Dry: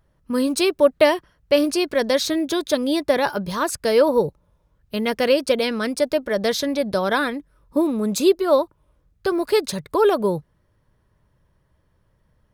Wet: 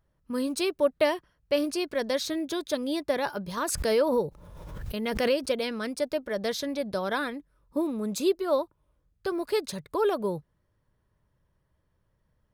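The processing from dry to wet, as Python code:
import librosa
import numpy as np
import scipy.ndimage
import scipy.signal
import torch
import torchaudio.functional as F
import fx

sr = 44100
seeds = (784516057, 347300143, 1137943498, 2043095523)

y = fx.pre_swell(x, sr, db_per_s=33.0, at=(3.57, 5.5))
y = y * 10.0 ** (-8.5 / 20.0)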